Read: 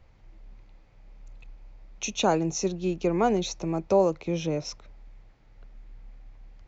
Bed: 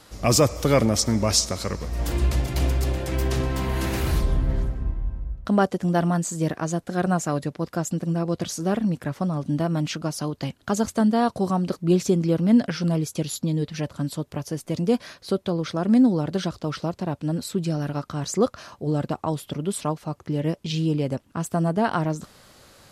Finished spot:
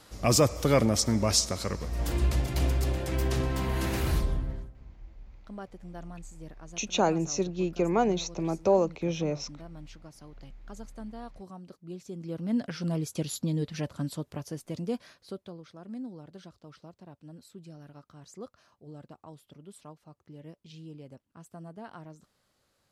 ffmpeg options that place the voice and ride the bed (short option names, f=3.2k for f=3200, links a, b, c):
-filter_complex "[0:a]adelay=4750,volume=-1.5dB[a];[1:a]volume=13dB,afade=t=out:st=4.14:d=0.57:silence=0.125893,afade=t=in:st=12.07:d=1.16:silence=0.141254,afade=t=out:st=13.92:d=1.73:silence=0.141254[b];[a][b]amix=inputs=2:normalize=0"